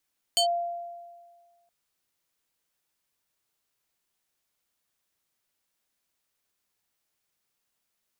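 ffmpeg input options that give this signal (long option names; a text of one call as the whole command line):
ffmpeg -f lavfi -i "aevalsrc='0.119*pow(10,-3*t/1.64)*sin(2*PI*691*t+2.1*clip(1-t/0.1,0,1)*sin(2*PI*5.48*691*t))':duration=1.32:sample_rate=44100" out.wav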